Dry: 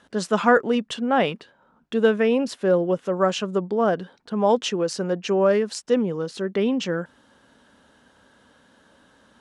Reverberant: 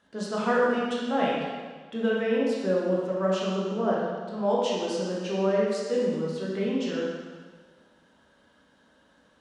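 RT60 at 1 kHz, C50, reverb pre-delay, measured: 1.5 s, −1.5 dB, 7 ms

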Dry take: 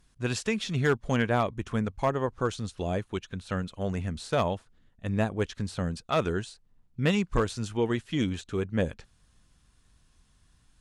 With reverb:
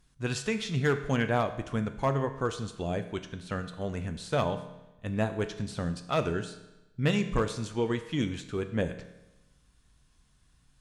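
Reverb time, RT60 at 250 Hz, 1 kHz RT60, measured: 1.0 s, 1.0 s, 1.0 s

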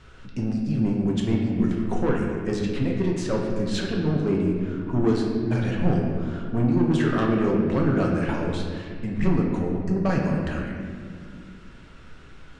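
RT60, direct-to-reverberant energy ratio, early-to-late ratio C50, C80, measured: 2.1 s, −1.5 dB, 2.0 dB, 3.5 dB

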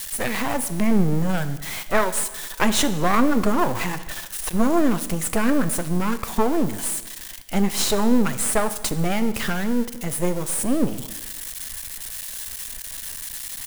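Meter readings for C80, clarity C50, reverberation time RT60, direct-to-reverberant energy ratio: 15.0 dB, 13.5 dB, 1.2 s, 11.5 dB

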